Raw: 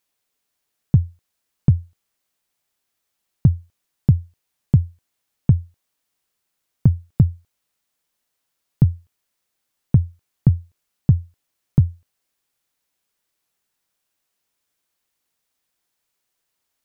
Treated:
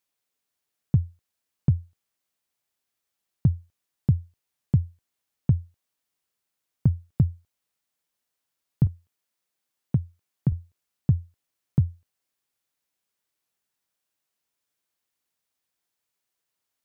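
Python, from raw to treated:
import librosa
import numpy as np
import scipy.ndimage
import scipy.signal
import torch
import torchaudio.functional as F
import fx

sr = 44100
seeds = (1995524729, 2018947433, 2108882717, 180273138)

y = fx.highpass(x, sr, hz=fx.steps((0.0, 41.0), (8.87, 120.0), (10.52, 50.0)), slope=12)
y = F.gain(torch.from_numpy(y), -6.0).numpy()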